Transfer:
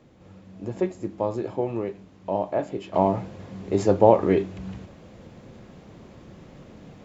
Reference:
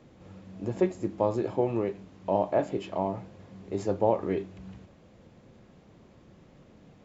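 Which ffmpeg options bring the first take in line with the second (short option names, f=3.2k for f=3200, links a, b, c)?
-af "asetnsamples=n=441:p=0,asendcmd='2.94 volume volume -9dB',volume=0dB"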